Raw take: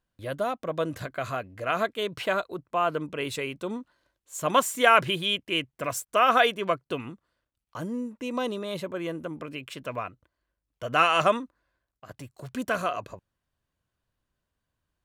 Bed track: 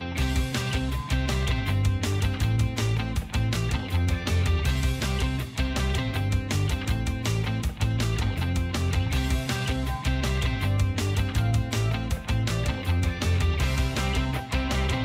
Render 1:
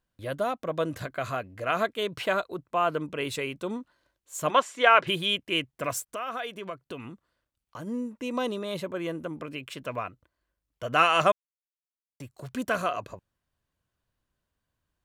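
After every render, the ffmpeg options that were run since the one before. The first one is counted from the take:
ffmpeg -i in.wav -filter_complex "[0:a]asplit=3[link_01][link_02][link_03];[link_01]afade=type=out:start_time=4.49:duration=0.02[link_04];[link_02]highpass=350,lowpass=4200,afade=type=in:start_time=4.49:duration=0.02,afade=type=out:start_time=5.06:duration=0.02[link_05];[link_03]afade=type=in:start_time=5.06:duration=0.02[link_06];[link_04][link_05][link_06]amix=inputs=3:normalize=0,asplit=3[link_07][link_08][link_09];[link_07]afade=type=out:start_time=6.06:duration=0.02[link_10];[link_08]acompressor=threshold=-37dB:ratio=2.5:attack=3.2:release=140:knee=1:detection=peak,afade=type=in:start_time=6.06:duration=0.02,afade=type=out:start_time=7.86:duration=0.02[link_11];[link_09]afade=type=in:start_time=7.86:duration=0.02[link_12];[link_10][link_11][link_12]amix=inputs=3:normalize=0,asplit=3[link_13][link_14][link_15];[link_13]atrim=end=11.32,asetpts=PTS-STARTPTS,afade=type=out:start_time=11.316:duration=0.004:curve=hsin[link_16];[link_14]atrim=start=11.32:end=12.2,asetpts=PTS-STARTPTS,volume=0[link_17];[link_15]atrim=start=12.2,asetpts=PTS-STARTPTS,afade=type=in:duration=0.004:curve=hsin[link_18];[link_16][link_17][link_18]concat=n=3:v=0:a=1" out.wav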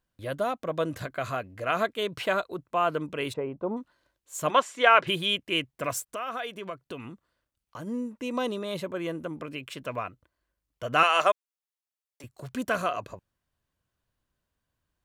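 ffmpeg -i in.wav -filter_complex "[0:a]asplit=3[link_01][link_02][link_03];[link_01]afade=type=out:start_time=3.32:duration=0.02[link_04];[link_02]lowpass=frequency=820:width_type=q:width=2,afade=type=in:start_time=3.32:duration=0.02,afade=type=out:start_time=3.76:duration=0.02[link_05];[link_03]afade=type=in:start_time=3.76:duration=0.02[link_06];[link_04][link_05][link_06]amix=inputs=3:normalize=0,asettb=1/sr,asplit=3[link_07][link_08][link_09];[link_07]atrim=end=11.034[link_10];[link_08]atrim=start=11.03:end=12.24,asetpts=PTS-STARTPTS,afade=type=in:duration=0.004:curve=qsin,afade=type=out:start_time=1.206:duration=0.004:curve=qsin,highpass=430[link_11];[link_09]atrim=start=12.236[link_12];[link_10][link_11]acrossfade=duration=0.004:curve1=hsin:curve2=qsin[link_13];[link_13][link_12]acrossfade=duration=0.004:curve1=qsin:curve2=hsin" out.wav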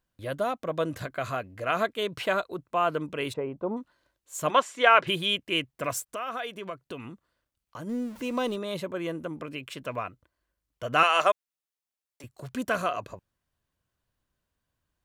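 ffmpeg -i in.wav -filter_complex "[0:a]asettb=1/sr,asplit=3[link_01][link_02][link_03];[link_01]atrim=end=7.894[link_04];[link_02]atrim=start=7.89:end=8.56,asetpts=PTS-STARTPTS,afade=type=in:duration=0.004:curve=qsin,afade=type=out:start_time=0.666:duration=0.004:curve=qsin,aeval=exprs='val(0)+0.5*0.0075*sgn(val(0))':channel_layout=same[link_05];[link_03]atrim=start=8.556[link_06];[link_04][link_05]acrossfade=duration=0.004:curve1=hsin:curve2=qsin[link_07];[link_07][link_06]acrossfade=duration=0.004:curve1=qsin:curve2=hsin" out.wav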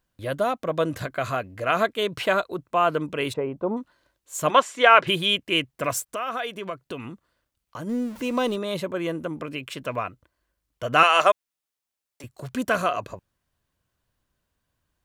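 ffmpeg -i in.wav -af "volume=4.5dB,alimiter=limit=-1dB:level=0:latency=1" out.wav

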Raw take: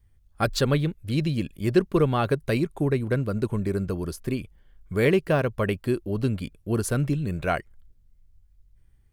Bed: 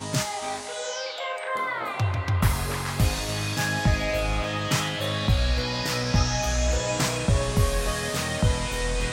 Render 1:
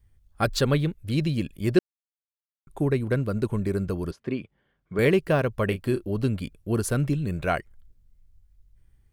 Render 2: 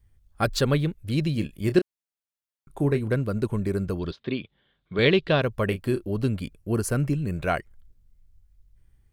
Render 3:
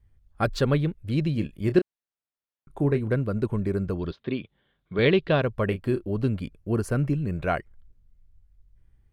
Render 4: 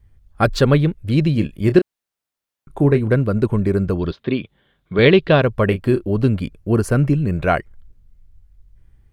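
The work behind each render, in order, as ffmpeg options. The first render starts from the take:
ffmpeg -i in.wav -filter_complex "[0:a]asettb=1/sr,asplit=3[link_01][link_02][link_03];[link_01]atrim=end=4.114[link_04];[link_02]atrim=start=4.11:end=4.99,asetpts=PTS-STARTPTS,afade=type=in:duration=0.004:curve=qsin,afade=type=out:start_time=0.876:duration=0.004:curve=qsin,highpass=160,lowpass=3100[link_05];[link_03]atrim=start=4.986[link_06];[link_04][link_05]acrossfade=duration=0.004:curve1=hsin:curve2=qsin[link_07];[link_07][link_06]acrossfade=duration=0.004:curve1=qsin:curve2=hsin,asettb=1/sr,asplit=3[link_08][link_09][link_10];[link_08]atrim=end=5.684[link_11];[link_09]atrim=start=5.68:end=6.09,asetpts=PTS-STARTPTS,afade=type=in:duration=0.004:curve=qsin,afade=type=out:start_time=0.406:duration=0.004:curve=qsin,asplit=2[link_12][link_13];[link_13]adelay=31,volume=-10dB[link_14];[link_12][link_14]amix=inputs=2:normalize=0,atrim=end_sample=18081[link_15];[link_10]atrim=start=6.086[link_16];[link_11][link_15]acrossfade=duration=0.004:curve1=hsin:curve2=qsin[link_17];[link_17][link_16]acrossfade=duration=0.004:curve1=qsin:curve2=hsin,asplit=3[link_18][link_19][link_20];[link_18]atrim=end=1.79,asetpts=PTS-STARTPTS,afade=type=out:start_time=1.786:duration=0.004:curve=hsin[link_21];[link_19]atrim=start=1.79:end=2.67,asetpts=PTS-STARTPTS,volume=0[link_22];[link_20]atrim=start=2.67,asetpts=PTS-STARTPTS,afade=type=in:duration=0.004:curve=hsin[link_23];[link_21][link_22][link_23]concat=n=3:v=0:a=1" out.wav
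ffmpeg -i in.wav -filter_complex "[0:a]asettb=1/sr,asplit=3[link_01][link_02][link_03];[link_01]atrim=end=1.324[link_04];[link_02]atrim=start=1.32:end=3.12,asetpts=PTS-STARTPTS,afade=type=in:duration=0.004:curve=qsin,afade=type=out:start_time=1.796:duration=0.004:curve=qsin,asplit=2[link_05][link_06];[link_06]adelay=28,volume=-11dB[link_07];[link_05][link_07]amix=inputs=2:normalize=0,atrim=end_sample=79380[link_08];[link_03]atrim=start=3.116[link_09];[link_04][link_08]acrossfade=duration=0.004:curve1=hsin:curve2=qsin[link_10];[link_10][link_09]acrossfade=duration=0.004:curve1=qsin:curve2=hsin,asettb=1/sr,asplit=3[link_11][link_12][link_13];[link_11]atrim=end=3.994[link_14];[link_12]atrim=start=3.99:end=5.42,asetpts=PTS-STARTPTS,afade=type=in:duration=0.004:curve=qsin,afade=type=out:start_time=1.426:duration=0.004:curve=qsin,lowpass=frequency=3700:width_type=q:width=6.8[link_15];[link_13]atrim=start=5.416[link_16];[link_14][link_15]acrossfade=duration=0.004:curve1=hsin:curve2=qsin[link_17];[link_17][link_16]acrossfade=duration=0.004:curve1=qsin:curve2=hsin,asettb=1/sr,asplit=3[link_18][link_19][link_20];[link_18]atrim=end=6.574[link_21];[link_19]atrim=start=6.57:end=7.36,asetpts=PTS-STARTPTS,afade=type=in:duration=0.004:curve=qsin,afade=type=out:start_time=0.786:duration=0.004:curve=qsin,equalizer=frequency=3600:width=6.8:gain=-13.5[link_22];[link_20]atrim=start=7.356[link_23];[link_21][link_22]acrossfade=duration=0.004:curve1=hsin:curve2=qsin[link_24];[link_24][link_23]acrossfade=duration=0.004:curve1=qsin:curve2=hsin" out.wav
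ffmpeg -i in.wav -af "highshelf=frequency=4300:gain=-12" out.wav
ffmpeg -i in.wav -af "volume=8.5dB,alimiter=limit=-2dB:level=0:latency=1" out.wav

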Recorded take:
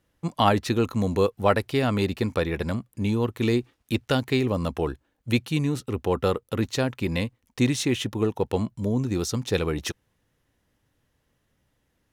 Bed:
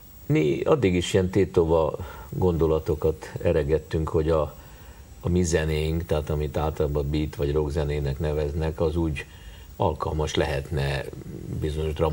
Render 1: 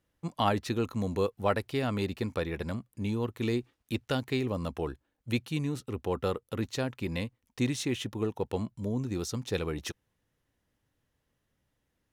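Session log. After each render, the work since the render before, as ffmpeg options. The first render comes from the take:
ffmpeg -i in.wav -af "volume=-7dB" out.wav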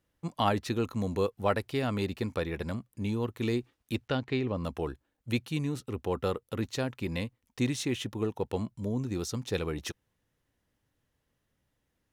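ffmpeg -i in.wav -filter_complex "[0:a]asplit=3[link_01][link_02][link_03];[link_01]afade=type=out:start_time=4.07:duration=0.02[link_04];[link_02]lowpass=3900,afade=type=in:start_time=4.07:duration=0.02,afade=type=out:start_time=4.63:duration=0.02[link_05];[link_03]afade=type=in:start_time=4.63:duration=0.02[link_06];[link_04][link_05][link_06]amix=inputs=3:normalize=0" out.wav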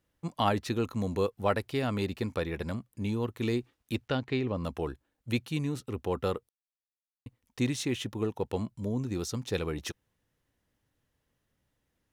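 ffmpeg -i in.wav -filter_complex "[0:a]asplit=3[link_01][link_02][link_03];[link_01]atrim=end=6.49,asetpts=PTS-STARTPTS,afade=type=out:start_time=6.486:duration=0.004:curve=hsin[link_04];[link_02]atrim=start=6.49:end=7.26,asetpts=PTS-STARTPTS,volume=0[link_05];[link_03]atrim=start=7.26,asetpts=PTS-STARTPTS,afade=type=in:duration=0.004:curve=hsin[link_06];[link_04][link_05][link_06]concat=n=3:v=0:a=1" out.wav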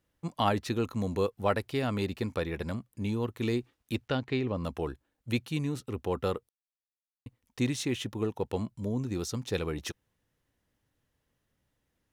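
ffmpeg -i in.wav -af anull out.wav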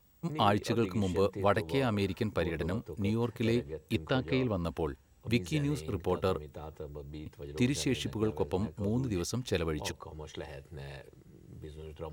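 ffmpeg -i in.wav -i bed.wav -filter_complex "[1:a]volume=-18.5dB[link_01];[0:a][link_01]amix=inputs=2:normalize=0" out.wav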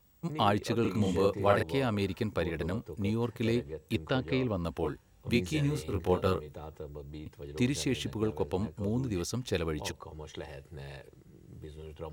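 ffmpeg -i in.wav -filter_complex "[0:a]asettb=1/sr,asplit=3[link_01][link_02][link_03];[link_01]atrim=end=0.814[link_04];[link_02]atrim=start=0.81:end=1.63,asetpts=PTS-STARTPTS,afade=type=in:duration=0.004:curve=qsin,afade=type=out:start_time=0.816:duration=0.004:curve=qsin,asplit=2[link_05][link_06];[link_06]adelay=38,volume=-2dB[link_07];[link_05][link_07]amix=inputs=2:normalize=0,atrim=end_sample=36162[link_08];[link_03]atrim=start=1.626[link_09];[link_04][link_08]acrossfade=duration=0.004:curve1=hsin:curve2=qsin[link_10];[link_10][link_09]acrossfade=duration=0.004:curve1=qsin:curve2=hsin,asettb=1/sr,asplit=3[link_11][link_12][link_13];[link_11]atrim=end=4.814[link_14];[link_12]atrim=start=4.81:end=6.53,asetpts=PTS-STARTPTS,afade=type=in:duration=0.004:curve=qsin,afade=type=out:start_time=1.716:duration=0.004:curve=qsin,asplit=2[link_15][link_16];[link_16]adelay=22,volume=-2.5dB[link_17];[link_15][link_17]amix=inputs=2:normalize=0,atrim=end_sample=75852[link_18];[link_13]atrim=start=6.526[link_19];[link_14][link_18]acrossfade=duration=0.004:curve1=hsin:curve2=qsin[link_20];[link_20][link_19]acrossfade=duration=0.004:curve1=qsin:curve2=hsin" out.wav

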